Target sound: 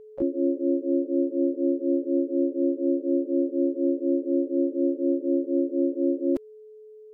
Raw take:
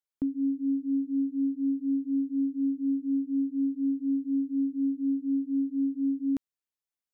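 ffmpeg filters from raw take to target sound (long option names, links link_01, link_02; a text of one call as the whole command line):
ffmpeg -i in.wav -filter_complex "[0:a]asplit=3[link_01][link_02][link_03];[link_02]asetrate=55563,aresample=44100,atempo=0.793701,volume=0dB[link_04];[link_03]asetrate=88200,aresample=44100,atempo=0.5,volume=-5dB[link_05];[link_01][link_04][link_05]amix=inputs=3:normalize=0,aeval=exprs='val(0)+0.00631*sin(2*PI*430*n/s)':channel_layout=same" out.wav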